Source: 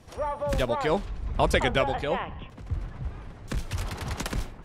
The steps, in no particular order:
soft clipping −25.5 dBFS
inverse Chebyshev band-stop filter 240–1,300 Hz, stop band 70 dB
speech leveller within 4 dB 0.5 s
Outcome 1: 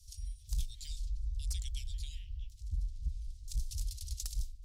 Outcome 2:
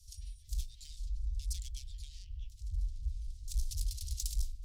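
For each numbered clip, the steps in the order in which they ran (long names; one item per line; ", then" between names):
inverse Chebyshev band-stop filter, then speech leveller, then soft clipping
speech leveller, then soft clipping, then inverse Chebyshev band-stop filter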